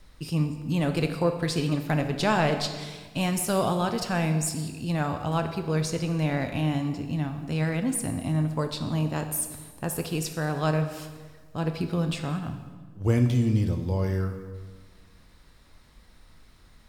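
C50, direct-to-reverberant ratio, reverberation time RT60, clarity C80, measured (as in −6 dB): 8.5 dB, 6.0 dB, 1.5 s, 10.0 dB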